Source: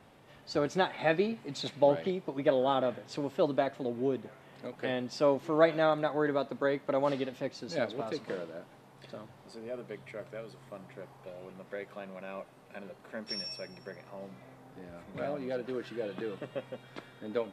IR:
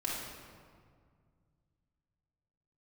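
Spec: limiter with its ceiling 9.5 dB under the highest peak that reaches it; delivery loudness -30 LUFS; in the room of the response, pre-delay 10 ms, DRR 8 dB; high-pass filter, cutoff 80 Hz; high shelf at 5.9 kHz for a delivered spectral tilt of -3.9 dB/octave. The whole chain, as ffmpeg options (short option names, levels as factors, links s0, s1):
-filter_complex "[0:a]highpass=80,highshelf=f=5900:g=5.5,alimiter=limit=0.0944:level=0:latency=1,asplit=2[s0][s1];[1:a]atrim=start_sample=2205,adelay=10[s2];[s1][s2]afir=irnorm=-1:irlink=0,volume=0.237[s3];[s0][s3]amix=inputs=2:normalize=0,volume=1.68"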